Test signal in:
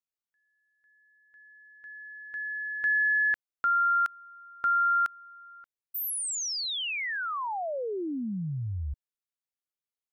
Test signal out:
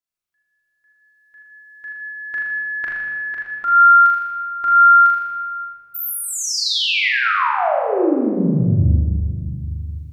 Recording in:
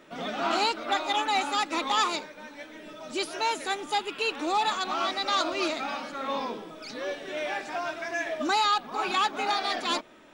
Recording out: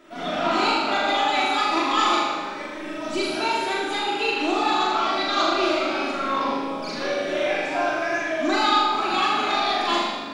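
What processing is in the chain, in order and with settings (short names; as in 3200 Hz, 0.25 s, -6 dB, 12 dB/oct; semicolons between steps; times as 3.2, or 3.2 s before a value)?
recorder AGC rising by 6.3 dB/s; dynamic EQ 8900 Hz, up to -7 dB, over -48 dBFS, Q 1.1; flutter echo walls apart 6.9 m, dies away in 0.87 s; shoebox room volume 2700 m³, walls mixed, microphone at 3 m; gain -1.5 dB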